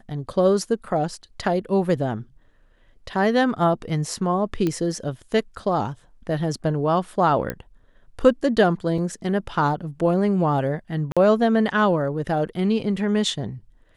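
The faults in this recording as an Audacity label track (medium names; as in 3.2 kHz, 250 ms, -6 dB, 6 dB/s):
4.670000	4.670000	pop -12 dBFS
7.500000	7.500000	pop -12 dBFS
8.980000	8.980000	dropout 3.8 ms
11.120000	11.170000	dropout 46 ms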